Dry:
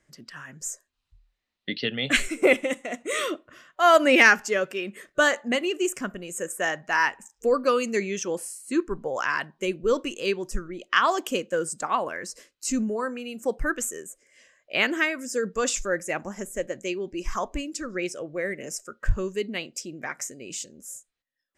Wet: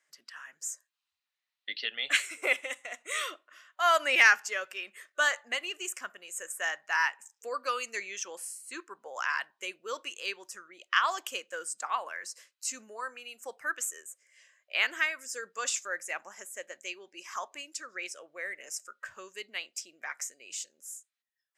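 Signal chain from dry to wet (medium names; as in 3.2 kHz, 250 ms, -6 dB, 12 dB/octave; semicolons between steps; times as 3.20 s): high-pass 1 kHz 12 dB/octave; trim -3.5 dB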